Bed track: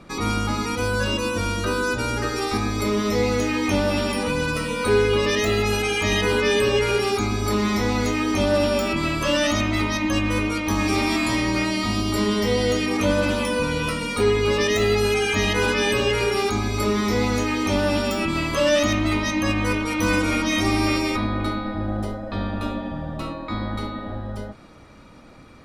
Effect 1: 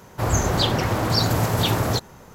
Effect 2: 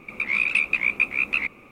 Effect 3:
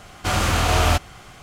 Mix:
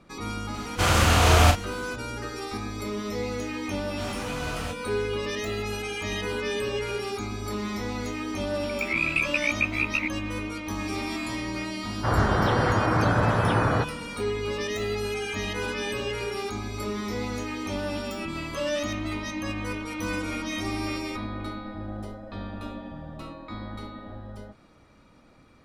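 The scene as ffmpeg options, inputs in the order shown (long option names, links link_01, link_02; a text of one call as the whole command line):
ffmpeg -i bed.wav -i cue0.wav -i cue1.wav -i cue2.wav -filter_complex "[3:a]asplit=2[link_01][link_02];[0:a]volume=-9.5dB[link_03];[link_01]asplit=2[link_04][link_05];[link_05]adelay=36,volume=-5dB[link_06];[link_04][link_06]amix=inputs=2:normalize=0[link_07];[link_02]flanger=delay=16:depth=4.5:speed=1.6[link_08];[1:a]lowpass=frequency=1500:width_type=q:width=2.3[link_09];[link_07]atrim=end=1.42,asetpts=PTS-STARTPTS,volume=-1dB,afade=type=in:duration=0.004:curve=hsin,afade=type=out:start_time=1.416:duration=0.004:curve=hsin,adelay=540[link_10];[link_08]atrim=end=1.42,asetpts=PTS-STARTPTS,volume=-13dB,afade=type=in:duration=0.004:curve=hsin,afade=type=out:start_time=1.416:duration=0.004:curve=hsin,adelay=3740[link_11];[2:a]atrim=end=1.71,asetpts=PTS-STARTPTS,volume=-4dB,afade=type=in:duration=0.004:curve=hsin,afade=type=out:start_time=1.706:duration=0.004:curve=hsin,adelay=8610[link_12];[link_09]atrim=end=2.34,asetpts=PTS-STARTPTS,volume=-2.5dB,afade=type=in:duration=0.004:curve=hsin,afade=type=out:start_time=2.336:duration=0.004:curve=hsin,adelay=11850[link_13];[link_03][link_10][link_11][link_12][link_13]amix=inputs=5:normalize=0" out.wav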